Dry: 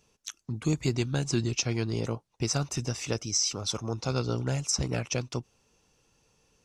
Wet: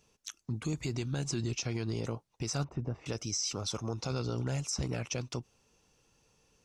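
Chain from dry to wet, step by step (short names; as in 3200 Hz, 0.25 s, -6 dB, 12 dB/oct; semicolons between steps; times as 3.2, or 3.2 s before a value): 2.64–3.06 LPF 1000 Hz 12 dB/oct; limiter -23 dBFS, peak gain reduction 9 dB; gain -1.5 dB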